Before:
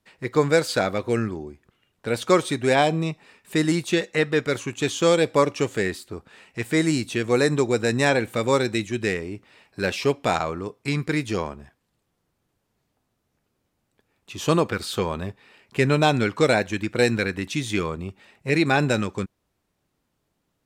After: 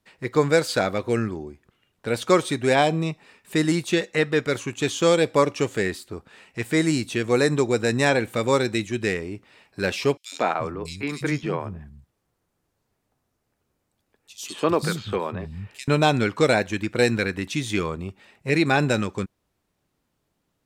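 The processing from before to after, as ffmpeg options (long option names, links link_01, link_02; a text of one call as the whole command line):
ffmpeg -i in.wav -filter_complex "[0:a]asettb=1/sr,asplit=3[link_01][link_02][link_03];[link_01]atrim=end=10.174[link_04];[link_02]atrim=start=10.17:end=15.88,asetpts=PTS-STARTPTS,afade=type=in:duration=0.004:curve=qsin,afade=type=out:start_time=5.706:duration=0.004:curve=qsin,acrossover=split=190|3300[link_05][link_06][link_07];[link_06]adelay=150[link_08];[link_05]adelay=350[link_09];[link_09][link_08][link_07]amix=inputs=3:normalize=0,atrim=end_sample=251811[link_10];[link_03]atrim=start=15.876[link_11];[link_04][link_10]acrossfade=duration=0.004:curve1=hsin:curve2=qsin[link_12];[link_12][link_11]acrossfade=duration=0.004:curve1=qsin:curve2=hsin" out.wav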